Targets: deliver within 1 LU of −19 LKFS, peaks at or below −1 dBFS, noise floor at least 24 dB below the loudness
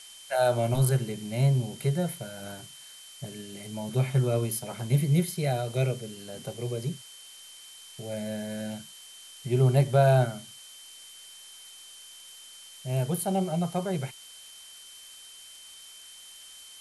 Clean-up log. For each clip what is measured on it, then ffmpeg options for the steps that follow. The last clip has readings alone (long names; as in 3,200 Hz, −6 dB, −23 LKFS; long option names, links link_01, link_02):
interfering tone 3,100 Hz; level of the tone −49 dBFS; background noise floor −49 dBFS; target noise floor −52 dBFS; integrated loudness −28.0 LKFS; sample peak −10.5 dBFS; target loudness −19.0 LKFS
→ -af "bandreject=frequency=3100:width=30"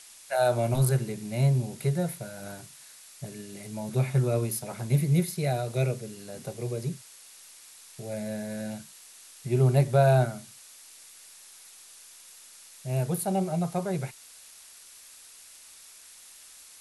interfering tone none found; background noise floor −51 dBFS; target noise floor −52 dBFS
→ -af "afftdn=noise_reduction=6:noise_floor=-51"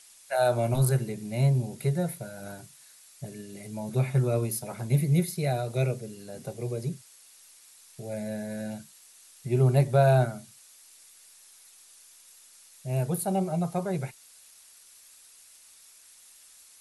background noise floor −55 dBFS; integrated loudness −28.0 LKFS; sample peak −10.5 dBFS; target loudness −19.0 LKFS
→ -af "volume=9dB"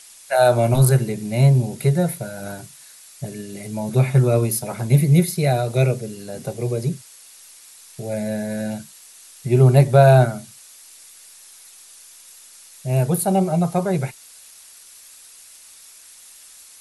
integrated loudness −19.0 LKFS; sample peak −1.5 dBFS; background noise floor −46 dBFS